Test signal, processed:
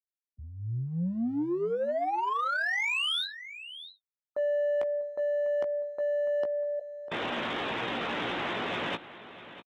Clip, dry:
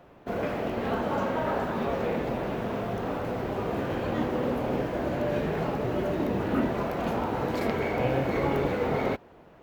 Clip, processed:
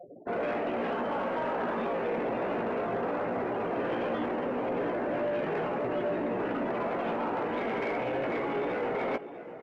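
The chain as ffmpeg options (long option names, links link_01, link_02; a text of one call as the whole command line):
ffmpeg -i in.wav -filter_complex "[0:a]afftfilt=real='re*gte(hypot(re,im),0.00891)':imag='im*gte(hypot(re,im),0.00891)':win_size=1024:overlap=0.75,highpass=260,alimiter=level_in=1.5dB:limit=-24dB:level=0:latency=1:release=15,volume=-1.5dB,areverse,acompressor=threshold=-39dB:ratio=6,areverse,aresample=8000,aresample=44100,asplit=2[link_01][link_02];[link_02]asoftclip=type=hard:threshold=-40dB,volume=-7.5dB[link_03];[link_01][link_03]amix=inputs=2:normalize=0,asplit=2[link_04][link_05];[link_05]adelay=17,volume=-7dB[link_06];[link_04][link_06]amix=inputs=2:normalize=0,aecho=1:1:648:0.168,aeval=exprs='0.0473*(cos(1*acos(clip(val(0)/0.0473,-1,1)))-cos(1*PI/2))+0.00266*(cos(5*acos(clip(val(0)/0.0473,-1,1)))-cos(5*PI/2))':channel_layout=same,volume=6dB" out.wav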